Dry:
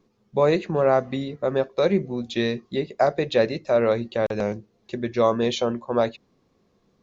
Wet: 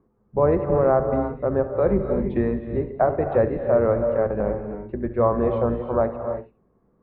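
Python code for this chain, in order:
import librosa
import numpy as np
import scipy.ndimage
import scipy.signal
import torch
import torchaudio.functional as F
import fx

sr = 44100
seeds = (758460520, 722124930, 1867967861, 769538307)

y = fx.octave_divider(x, sr, octaves=2, level_db=-5.0)
y = scipy.signal.sosfilt(scipy.signal.butter(4, 1500.0, 'lowpass', fs=sr, output='sos'), y)
y = y + 10.0 ** (-14.5 / 20.0) * np.pad(y, (int(70 * sr / 1000.0), 0))[:len(y)]
y = fx.rev_gated(y, sr, seeds[0], gate_ms=360, shape='rising', drr_db=6.5)
y = fx.band_squash(y, sr, depth_pct=70, at=(1.86, 2.59))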